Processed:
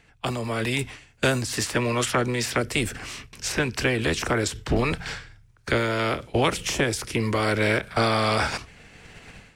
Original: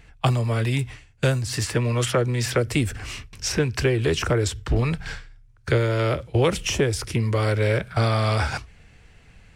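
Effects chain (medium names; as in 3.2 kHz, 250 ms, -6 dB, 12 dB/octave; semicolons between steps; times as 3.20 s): spectral peaks clipped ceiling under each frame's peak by 14 dB; level rider gain up to 15.5 dB; endings held to a fixed fall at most 340 dB/s; trim -8.5 dB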